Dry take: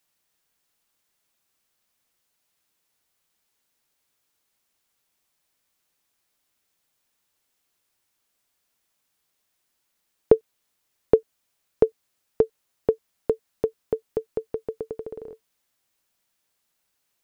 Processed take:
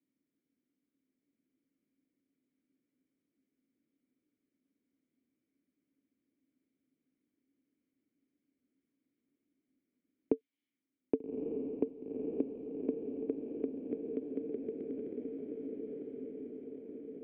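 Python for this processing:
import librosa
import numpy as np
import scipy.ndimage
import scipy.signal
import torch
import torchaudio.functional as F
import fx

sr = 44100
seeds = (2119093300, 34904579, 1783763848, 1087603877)

p1 = fx.vowel_filter(x, sr, vowel='i')
p2 = fx.env_lowpass(p1, sr, base_hz=770.0, full_db=-43.5)
p3 = fx.high_shelf(p2, sr, hz=2000.0, db=-9.5)
p4 = p3 + fx.echo_diffused(p3, sr, ms=1203, feedback_pct=50, wet_db=-3, dry=0)
p5 = fx.band_squash(p4, sr, depth_pct=40)
y = p5 * librosa.db_to_amplitude(5.0)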